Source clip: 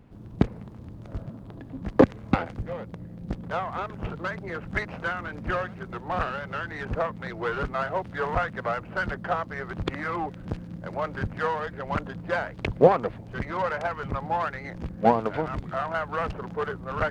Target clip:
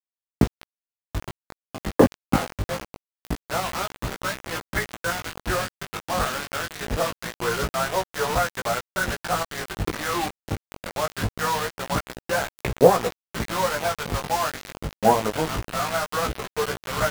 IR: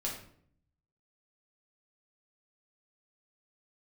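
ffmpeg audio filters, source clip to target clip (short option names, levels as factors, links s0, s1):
-filter_complex "[0:a]acrossover=split=2900[s0][s1];[s1]acompressor=threshold=0.00112:ratio=6[s2];[s0][s2]amix=inputs=2:normalize=0,acrusher=bits=4:mix=0:aa=0.000001,flanger=delay=15.5:depth=4.8:speed=0.24,volume=1.88"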